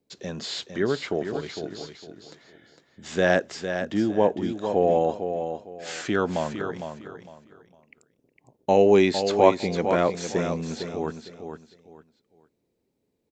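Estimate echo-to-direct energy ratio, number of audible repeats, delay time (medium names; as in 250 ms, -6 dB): -7.5 dB, 3, 456 ms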